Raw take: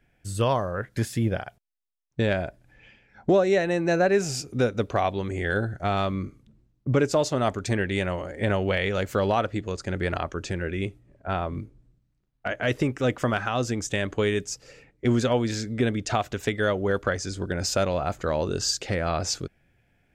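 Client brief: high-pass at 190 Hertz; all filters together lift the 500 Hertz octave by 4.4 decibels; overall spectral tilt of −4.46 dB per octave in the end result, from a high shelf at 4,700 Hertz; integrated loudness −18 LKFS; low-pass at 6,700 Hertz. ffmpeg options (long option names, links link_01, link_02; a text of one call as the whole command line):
ffmpeg -i in.wav -af "highpass=190,lowpass=6700,equalizer=frequency=500:width_type=o:gain=5.5,highshelf=frequency=4700:gain=3.5,volume=6dB" out.wav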